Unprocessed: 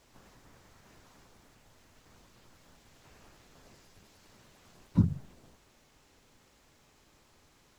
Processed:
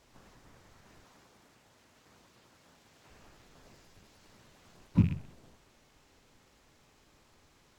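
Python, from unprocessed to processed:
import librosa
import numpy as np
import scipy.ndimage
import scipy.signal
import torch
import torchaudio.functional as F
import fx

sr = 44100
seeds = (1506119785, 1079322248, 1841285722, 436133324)

y = fx.rattle_buzz(x, sr, strikes_db=-30.0, level_db=-35.0)
y = fx.highpass(y, sr, hz=150.0, slope=6, at=(1.04, 3.09))
y = y + 10.0 ** (-17.0 / 20.0) * np.pad(y, (int(126 * sr / 1000.0), 0))[:len(y)]
y = np.interp(np.arange(len(y)), np.arange(len(y))[::2], y[::2])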